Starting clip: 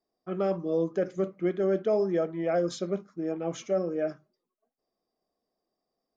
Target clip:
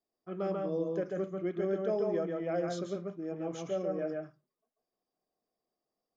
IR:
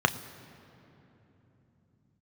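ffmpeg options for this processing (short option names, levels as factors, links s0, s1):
-filter_complex "[0:a]asplit=2[s0][s1];[1:a]atrim=start_sample=2205,atrim=end_sample=3969,adelay=140[s2];[s1][s2]afir=irnorm=-1:irlink=0,volume=0.178[s3];[s0][s3]amix=inputs=2:normalize=0,volume=0.447"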